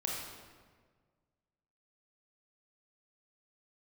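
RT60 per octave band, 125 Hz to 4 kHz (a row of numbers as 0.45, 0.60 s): 2.0, 1.8, 1.7, 1.5, 1.3, 1.1 s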